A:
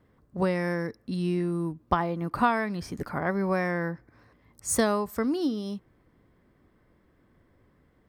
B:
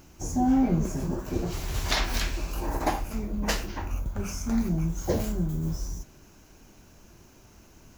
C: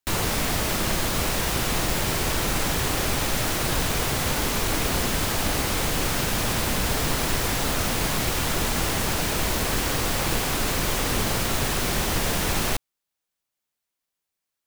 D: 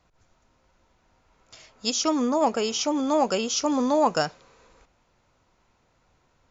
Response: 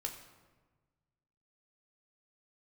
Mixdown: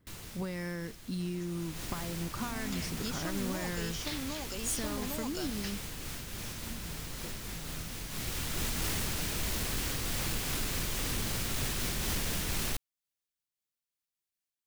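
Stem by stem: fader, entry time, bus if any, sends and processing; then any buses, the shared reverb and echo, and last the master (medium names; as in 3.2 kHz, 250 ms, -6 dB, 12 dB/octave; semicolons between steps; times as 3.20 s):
-2.5 dB, 0.00 s, no send, treble shelf 4.9 kHz +7 dB; compression, threshold -28 dBFS, peak gain reduction 10.5 dB
-13.0 dB, 2.15 s, no send, low-pass 4.3 kHz; tilt shelf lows -6.5 dB, about 1.5 kHz
1.50 s -15 dB -> 1.79 s -4.5 dB, 0.00 s, no send, random flutter of the level, depth 50%; auto duck -8 dB, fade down 0.55 s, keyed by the first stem
-13.5 dB, 1.20 s, no send, three bands compressed up and down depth 100%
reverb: none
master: peaking EQ 740 Hz -8 dB 2.2 oct; wavefolder -26 dBFS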